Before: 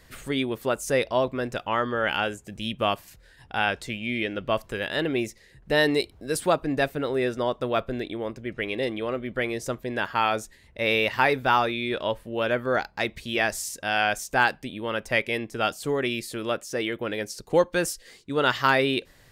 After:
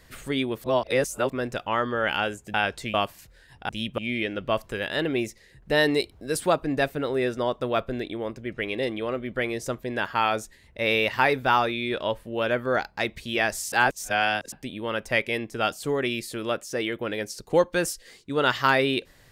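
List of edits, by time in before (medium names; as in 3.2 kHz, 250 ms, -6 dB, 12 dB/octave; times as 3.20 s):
0.64–1.30 s: reverse
2.54–2.83 s: swap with 3.58–3.98 s
13.72–14.52 s: reverse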